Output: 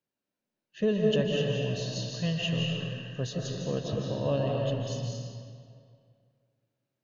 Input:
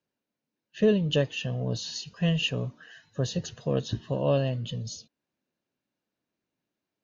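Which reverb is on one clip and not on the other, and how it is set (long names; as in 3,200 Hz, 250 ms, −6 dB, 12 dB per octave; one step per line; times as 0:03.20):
comb and all-pass reverb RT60 2.2 s, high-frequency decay 0.75×, pre-delay 115 ms, DRR −1.5 dB
level −5 dB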